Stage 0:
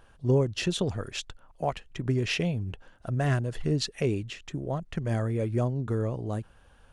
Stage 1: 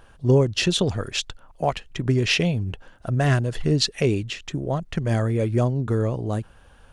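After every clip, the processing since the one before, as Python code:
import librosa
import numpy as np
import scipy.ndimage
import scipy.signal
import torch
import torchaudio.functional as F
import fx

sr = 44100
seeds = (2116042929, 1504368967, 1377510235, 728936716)

y = fx.dynamic_eq(x, sr, hz=4300.0, q=0.82, threshold_db=-49.0, ratio=4.0, max_db=4)
y = y * librosa.db_to_amplitude(6.0)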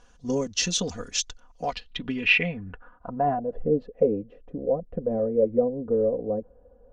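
y = x + 0.82 * np.pad(x, (int(4.1 * sr / 1000.0), 0))[:len(x)]
y = fx.filter_sweep_lowpass(y, sr, from_hz=6300.0, to_hz=530.0, start_s=1.51, end_s=3.62, q=5.1)
y = y * librosa.db_to_amplitude(-9.0)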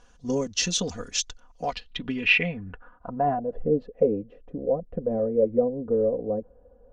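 y = x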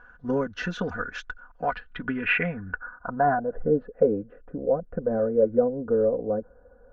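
y = fx.lowpass_res(x, sr, hz=1500.0, q=9.1)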